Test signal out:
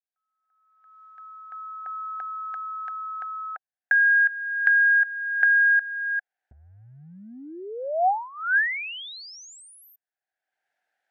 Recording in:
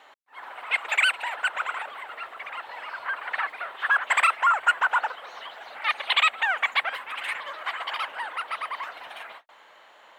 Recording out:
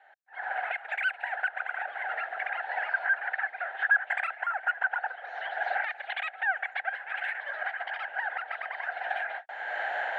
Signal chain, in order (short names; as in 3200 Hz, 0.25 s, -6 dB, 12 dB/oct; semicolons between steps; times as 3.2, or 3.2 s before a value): recorder AGC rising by 29 dB/s; double band-pass 1100 Hz, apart 1.1 oct